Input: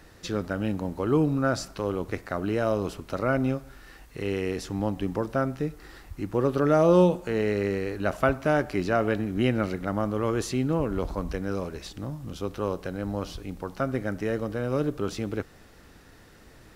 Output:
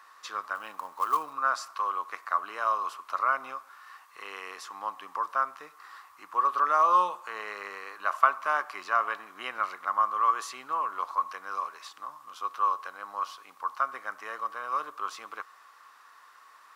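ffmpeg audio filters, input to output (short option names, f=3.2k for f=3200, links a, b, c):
-filter_complex "[0:a]highpass=f=1.1k:t=q:w=11,asettb=1/sr,asplit=3[a][b][c];[a]atrim=end=0.554[d];[b]atrim=start=0.55:end=1.33,asetpts=PTS-STARTPTS,afade=t=in:d=0.004:c=qsin,afade=t=out:st=0.776:d=0.004:c=qsin,acrusher=bits=5:mode=log:mix=0:aa=0.000001[e];[c]atrim=start=1.326[f];[d][e]acrossfade=d=0.004:c1=hsin:c2=qsin[g];[g][f]acrossfade=d=0.004:c1=qsin:c2=hsin,volume=-5dB"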